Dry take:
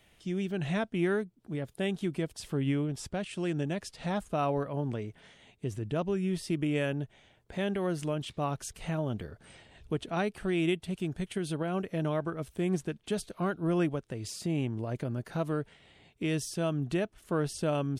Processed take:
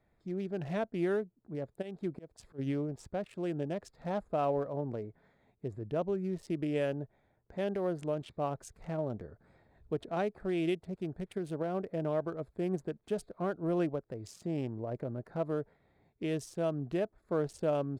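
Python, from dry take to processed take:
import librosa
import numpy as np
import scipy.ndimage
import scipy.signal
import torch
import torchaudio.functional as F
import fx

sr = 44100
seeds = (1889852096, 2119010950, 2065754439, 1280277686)

y = fx.wiener(x, sr, points=15)
y = fx.dynamic_eq(y, sr, hz=550.0, q=0.99, threshold_db=-46.0, ratio=4.0, max_db=8)
y = fx.auto_swell(y, sr, attack_ms=252.0, at=(1.81, 2.58), fade=0.02)
y = y * librosa.db_to_amplitude(-6.5)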